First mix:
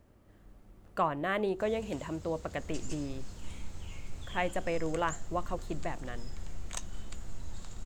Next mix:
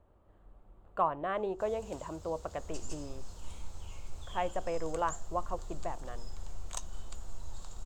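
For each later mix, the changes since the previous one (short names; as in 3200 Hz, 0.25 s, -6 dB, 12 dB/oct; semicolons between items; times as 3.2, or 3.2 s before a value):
speech: add running mean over 8 samples; master: add graphic EQ 125/250/1000/2000 Hz -6/-8/+4/-9 dB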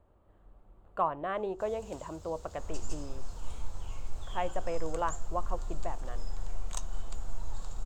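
second sound +7.5 dB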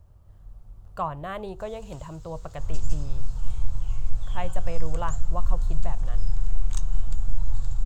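speech: remove running mean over 8 samples; first sound: add inverse Chebyshev high-pass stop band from 540 Hz; master: add resonant low shelf 190 Hz +12.5 dB, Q 1.5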